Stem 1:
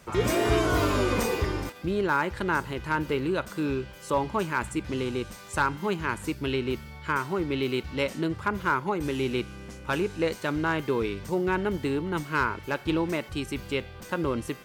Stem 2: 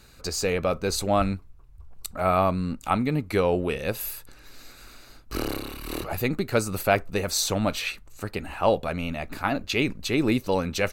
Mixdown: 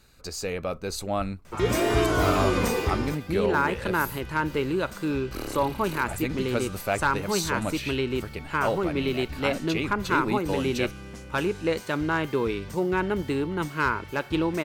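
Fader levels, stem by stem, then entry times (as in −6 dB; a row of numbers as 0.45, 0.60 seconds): +1.0, −5.5 decibels; 1.45, 0.00 seconds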